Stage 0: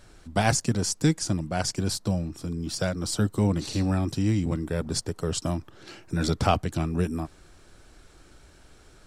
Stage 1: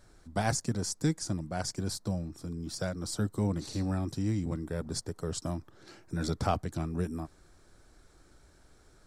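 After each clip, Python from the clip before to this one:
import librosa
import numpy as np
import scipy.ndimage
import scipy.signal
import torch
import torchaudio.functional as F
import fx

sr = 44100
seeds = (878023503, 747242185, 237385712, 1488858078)

y = fx.peak_eq(x, sr, hz=2800.0, db=-8.0, octaves=0.55)
y = F.gain(torch.from_numpy(y), -6.5).numpy()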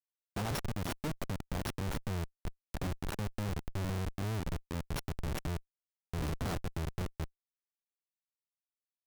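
y = np.r_[np.sort(x[:len(x) // 8 * 8].reshape(-1, 8), axis=1).ravel(), x[len(x) // 8 * 8:]]
y = fx.rider(y, sr, range_db=4, speed_s=2.0)
y = fx.schmitt(y, sr, flips_db=-30.0)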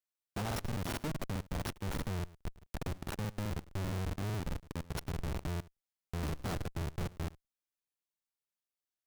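y = x + 10.0 ** (-20.0 / 20.0) * np.pad(x, (int(108 * sr / 1000.0), 0))[:len(x)]
y = fx.buffer_crackle(y, sr, first_s=0.47, period_s=0.21, block=2048, kind='repeat')
y = F.gain(torch.from_numpy(y), -1.0).numpy()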